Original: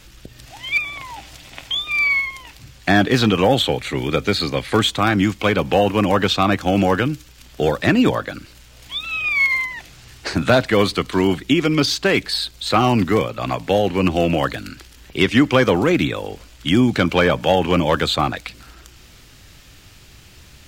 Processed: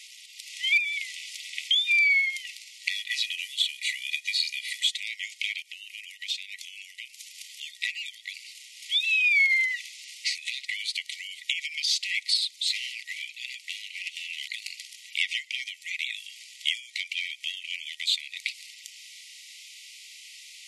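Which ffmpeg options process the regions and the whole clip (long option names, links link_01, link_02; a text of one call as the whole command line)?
ffmpeg -i in.wav -filter_complex "[0:a]asettb=1/sr,asplit=3[link_01][link_02][link_03];[link_01]atrim=end=2.914[link_04];[link_02]atrim=start=2.91:end=4.89,asetpts=PTS-STARTPTS,afade=type=in:duration=0.004:curve=qsin,afade=type=out:start_time=1.976:duration=0.004:curve=qsin,aecho=1:1:2.1:0.37,atrim=end_sample=87318,afreqshift=43,acrusher=bits=6:mode=log:mix=0:aa=0.000001[link_05];[link_03]atrim=start=4.886[link_06];[link_04][link_05]acrossfade=duration=0.004:curve1=hsin:curve2=qsin[link_07];[link_07][link_06]acrossfade=duration=0.004:curve1=qsin:curve2=hsin,asettb=1/sr,asplit=3[link_08][link_09][link_10];[link_08]atrim=end=5.624[link_11];[link_09]atrim=start=5.62:end=7.61,asetpts=PTS-STARTPTS,afade=type=in:duration=0.004:curve=qsin,afade=type=out:start_time=1.986:duration=0.004:curve=qsin,highshelf=frequency=10000:gain=7,acompressor=threshold=-33dB:ratio=3:attack=3.2:release=140:knee=1:detection=peak[link_12];[link_10]atrim=start=7.606[link_13];[link_11][link_12]acrossfade=duration=0.004:curve1=hsin:curve2=qsin[link_14];[link_14][link_13]acrossfade=duration=0.004:curve1=qsin:curve2=hsin,asettb=1/sr,asplit=3[link_15][link_16][link_17];[link_15]atrim=end=12.374[link_18];[link_16]atrim=start=12.37:end=14.62,asetpts=PTS-STARTPTS,afade=type=in:duration=0.004:curve=qsin,afade=type=out:start_time=2.246:duration=0.004:curve=qsin,flanger=delay=0.4:depth=6.9:regen=-28:speed=1.4:shape=sinusoidal,volume=19dB,asoftclip=hard,volume=-19dB[link_19];[link_17]atrim=start=14.616[link_20];[link_18][link_19]acrossfade=duration=0.004:curve1=hsin:curve2=qsin[link_21];[link_21][link_20]acrossfade=duration=0.004:curve1=qsin:curve2=hsin,acompressor=threshold=-24dB:ratio=4,afftfilt=real='re*between(b*sr/4096,1900,12000)':imag='im*between(b*sr/4096,1900,12000)':win_size=4096:overlap=0.75,volume=3.5dB" out.wav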